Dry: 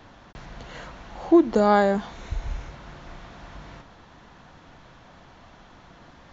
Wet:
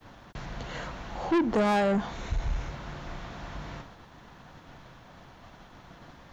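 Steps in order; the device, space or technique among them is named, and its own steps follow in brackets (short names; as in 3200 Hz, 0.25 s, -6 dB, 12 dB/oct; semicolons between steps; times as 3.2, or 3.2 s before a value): expander -45 dBFS; dynamic EQ 4300 Hz, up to -5 dB, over -44 dBFS, Q 0.83; open-reel tape (soft clip -23.5 dBFS, distortion -4 dB; bell 130 Hz +2.5 dB; white noise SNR 47 dB); gain +2.5 dB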